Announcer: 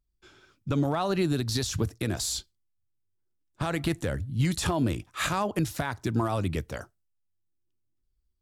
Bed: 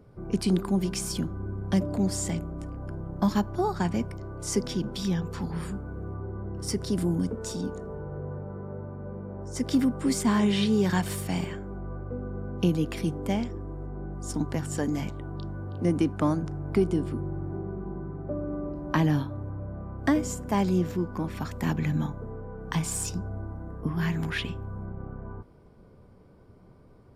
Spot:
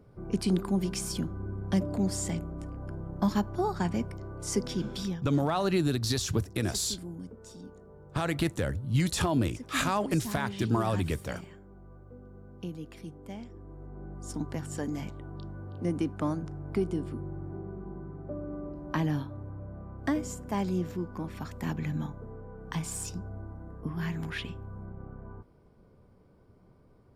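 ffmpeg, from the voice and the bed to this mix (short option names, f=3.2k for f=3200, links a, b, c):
-filter_complex "[0:a]adelay=4550,volume=-0.5dB[a];[1:a]volume=6.5dB,afade=t=out:st=5.01:d=0.2:silence=0.251189,afade=t=in:st=13.35:d=0.8:silence=0.354813[b];[a][b]amix=inputs=2:normalize=0"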